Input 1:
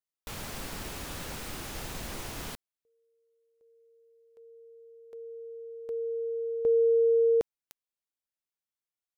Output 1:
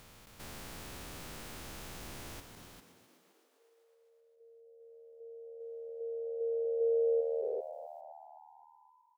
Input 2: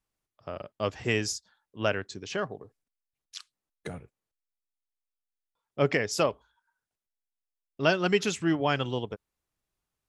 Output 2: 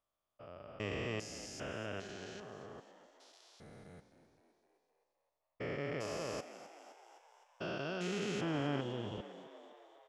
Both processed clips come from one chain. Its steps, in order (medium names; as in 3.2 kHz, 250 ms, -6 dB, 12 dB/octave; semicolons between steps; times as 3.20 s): spectrogram pixelated in time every 400 ms; frequency-shifting echo 258 ms, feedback 61%, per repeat +77 Hz, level -13.5 dB; trim -6 dB